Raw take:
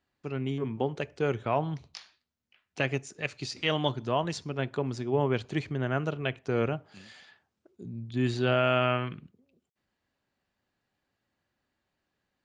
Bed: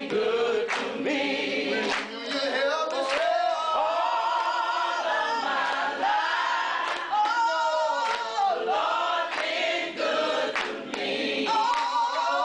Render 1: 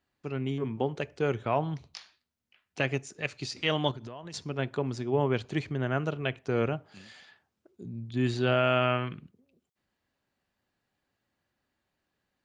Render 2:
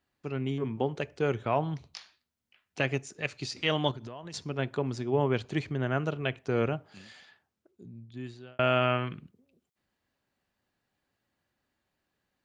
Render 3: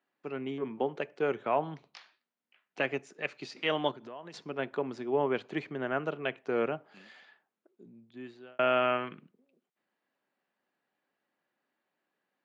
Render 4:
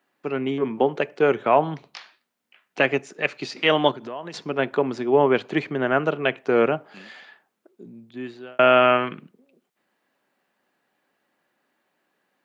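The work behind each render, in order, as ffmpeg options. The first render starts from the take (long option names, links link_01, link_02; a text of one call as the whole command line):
ffmpeg -i in.wav -filter_complex "[0:a]asettb=1/sr,asplit=3[link_01][link_02][link_03];[link_01]atrim=end=3.914[link_04];[link_02]atrim=start=3.91:end=4.34,asetpts=PTS-STARTPTS,afade=type=in:duration=0.004:curve=qsin,afade=type=out:start_time=0.426:duration=0.004:curve=qsin,acompressor=threshold=-37dB:ratio=16:attack=3.2:release=140:knee=1:detection=peak[link_05];[link_03]atrim=start=4.336[link_06];[link_04][link_05]acrossfade=duration=0.004:curve1=hsin:curve2=qsin[link_07];[link_07][link_06]acrossfade=duration=0.004:curve1=qsin:curve2=hsin" out.wav
ffmpeg -i in.wav -filter_complex "[0:a]asplit=2[link_01][link_02];[link_01]atrim=end=8.59,asetpts=PTS-STARTPTS,afade=type=out:start_time=7.05:duration=1.54[link_03];[link_02]atrim=start=8.59,asetpts=PTS-STARTPTS,afade=type=in:duration=0.004:curve=hsin[link_04];[link_03][link_04]concat=n=2:v=0:a=1" out.wav
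ffmpeg -i in.wav -af "highpass=frequency=160:width=0.5412,highpass=frequency=160:width=1.3066,bass=frequency=250:gain=-8,treble=frequency=4000:gain=-14" out.wav
ffmpeg -i in.wav -af "volume=11dB" out.wav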